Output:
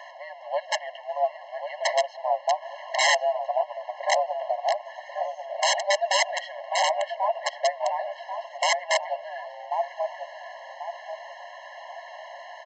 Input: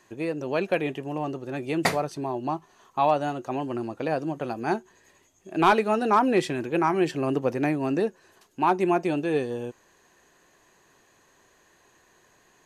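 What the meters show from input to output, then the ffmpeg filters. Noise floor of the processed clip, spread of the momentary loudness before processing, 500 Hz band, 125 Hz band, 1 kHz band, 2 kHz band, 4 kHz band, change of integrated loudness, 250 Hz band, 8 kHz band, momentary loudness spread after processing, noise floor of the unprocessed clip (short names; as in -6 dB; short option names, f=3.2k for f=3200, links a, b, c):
-45 dBFS, 11 LU, -0.5 dB, under -40 dB, +0.5 dB, +4.0 dB, +11.0 dB, -0.5 dB, under -40 dB, +12.5 dB, 18 LU, -62 dBFS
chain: -filter_complex "[0:a]aeval=exprs='val(0)+0.5*0.0188*sgn(val(0))':c=same,acrossover=split=2300[a][b];[a]aphaser=in_gain=1:out_gain=1:delay=2.5:decay=0.27:speed=1.4:type=triangular[c];[c][b]amix=inputs=2:normalize=0,afreqshift=-53,highpass=f=290:w=0.5412,highpass=f=290:w=1.3066,equalizer=f=690:t=q:w=4:g=10,equalizer=f=2.4k:t=q:w=4:g=4,equalizer=f=3.6k:t=q:w=4:g=-7,lowpass=f=4.2k:w=0.5412,lowpass=f=4.2k:w=1.3066,aecho=1:1:1089|2178|3267|4356:0.422|0.156|0.0577|0.0214,aresample=16000,aeval=exprs='(mod(3.76*val(0)+1,2)-1)/3.76':c=same,aresample=44100,afftfilt=real='re*eq(mod(floor(b*sr/1024/550),2),1)':imag='im*eq(mod(floor(b*sr/1024/550),2),1)':win_size=1024:overlap=0.75,volume=-1.5dB"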